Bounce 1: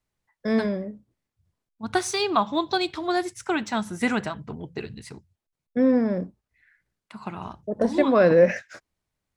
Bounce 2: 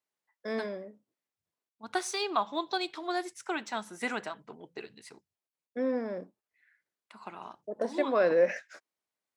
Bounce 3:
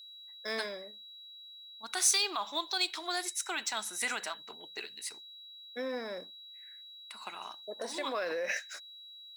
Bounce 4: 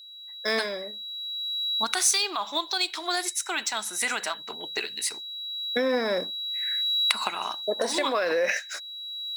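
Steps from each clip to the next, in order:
high-pass 360 Hz 12 dB/octave; trim -6.5 dB
whistle 3.9 kHz -57 dBFS; peak limiter -24.5 dBFS, peak gain reduction 9.5 dB; tilt EQ +4.5 dB/octave
recorder AGC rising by 15 dB/s; trim +4 dB

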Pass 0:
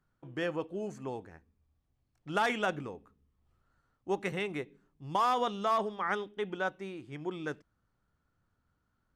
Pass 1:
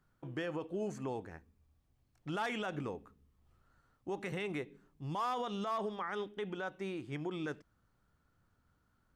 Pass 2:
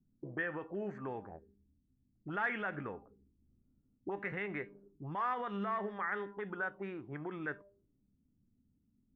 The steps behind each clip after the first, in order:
in parallel at -3 dB: compression, threshold -40 dBFS, peak gain reduction 14 dB; on the sum: peak limiter -28 dBFS, peak gain reduction 11 dB; trim -1.5 dB
feedback comb 200 Hz, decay 0.62 s, harmonics all, mix 60%; touch-sensitive low-pass 240–1800 Hz up, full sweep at -42.5 dBFS; trim +4 dB

